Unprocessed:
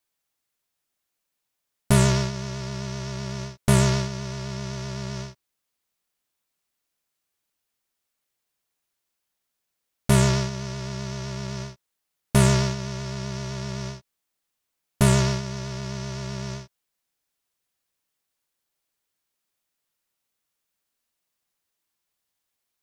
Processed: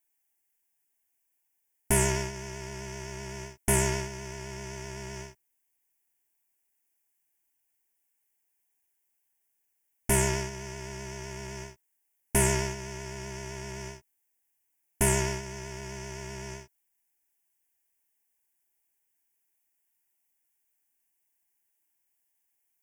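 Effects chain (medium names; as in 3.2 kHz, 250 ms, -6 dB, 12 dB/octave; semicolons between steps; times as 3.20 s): treble shelf 5.7 kHz +8.5 dB; static phaser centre 820 Hz, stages 8; trim -1.5 dB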